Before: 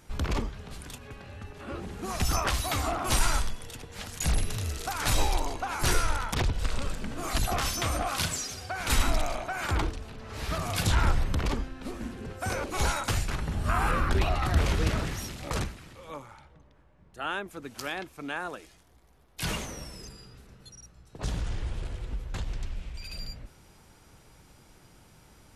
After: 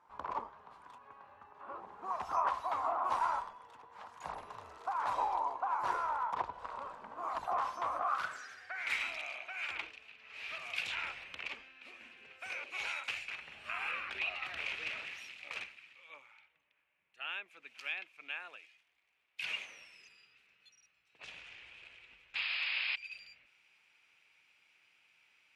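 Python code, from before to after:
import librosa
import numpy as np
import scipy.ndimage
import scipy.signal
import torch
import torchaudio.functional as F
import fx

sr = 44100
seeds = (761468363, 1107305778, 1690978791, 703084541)

y = fx.dynamic_eq(x, sr, hz=580.0, q=1.2, threshold_db=-47.0, ratio=4.0, max_db=5)
y = fx.spec_paint(y, sr, seeds[0], shape='noise', start_s=22.35, length_s=0.61, low_hz=540.0, high_hz=5200.0, level_db=-31.0)
y = fx.filter_sweep_bandpass(y, sr, from_hz=1000.0, to_hz=2500.0, start_s=7.88, end_s=9.09, q=5.8)
y = F.gain(torch.from_numpy(y), 4.0).numpy()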